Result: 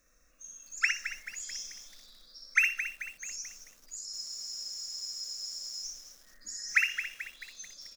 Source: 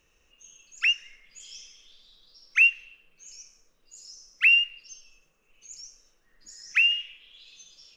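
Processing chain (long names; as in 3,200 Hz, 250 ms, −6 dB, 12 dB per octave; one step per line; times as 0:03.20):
on a send: repeating echo 61 ms, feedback 16%, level −6 dB
on the sum: automatic gain control gain up to 4 dB
high-shelf EQ 2,300 Hz +4.5 dB
phaser with its sweep stopped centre 590 Hz, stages 8
frozen spectrum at 0:04.09, 1.75 s
feedback echo at a low word length 218 ms, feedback 55%, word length 8 bits, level −10 dB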